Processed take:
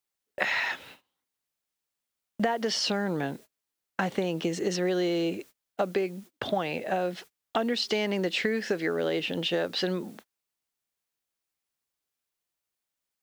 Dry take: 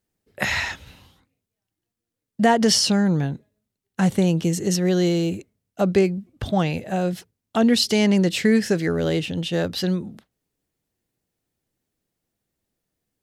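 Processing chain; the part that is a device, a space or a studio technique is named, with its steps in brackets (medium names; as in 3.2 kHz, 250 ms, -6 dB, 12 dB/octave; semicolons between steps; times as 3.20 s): baby monitor (band-pass 360–3700 Hz; compression 10:1, threshold -28 dBFS, peak gain reduction 15 dB; white noise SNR 28 dB; gate -50 dBFS, range -27 dB); trim +4 dB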